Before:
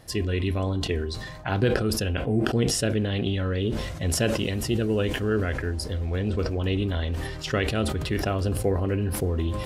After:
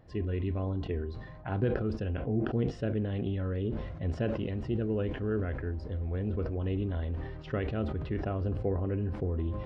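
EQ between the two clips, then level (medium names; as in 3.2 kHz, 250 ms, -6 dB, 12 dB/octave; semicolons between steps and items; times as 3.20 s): tape spacing loss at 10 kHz 43 dB; -5.0 dB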